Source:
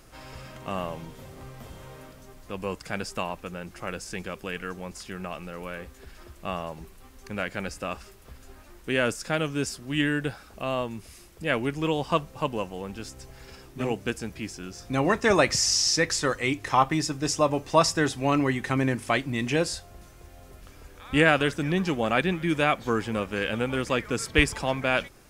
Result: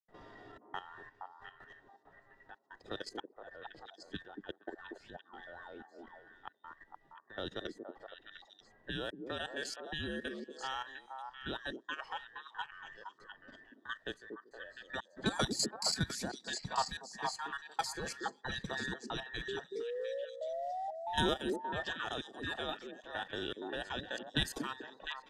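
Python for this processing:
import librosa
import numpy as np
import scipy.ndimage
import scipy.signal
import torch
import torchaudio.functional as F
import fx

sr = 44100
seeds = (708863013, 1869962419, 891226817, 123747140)

y = fx.band_invert(x, sr, width_hz=2000)
y = fx.peak_eq(y, sr, hz=1600.0, db=-14.0, octaves=1.4)
y = fx.spec_paint(y, sr, seeds[0], shape='rise', start_s=19.48, length_s=1.78, low_hz=390.0, high_hz=950.0, level_db=-30.0)
y = fx.level_steps(y, sr, step_db=13)
y = fx.step_gate(y, sr, bpm=183, pattern='.xxxxxx.', floor_db=-60.0, edge_ms=4.5)
y = fx.noise_reduce_blind(y, sr, reduce_db=7)
y = fx.env_lowpass(y, sr, base_hz=1200.0, full_db=-32.0)
y = fx.echo_stepped(y, sr, ms=234, hz=310.0, octaves=1.4, feedback_pct=70, wet_db=-2.0)
y = fx.band_squash(y, sr, depth_pct=40)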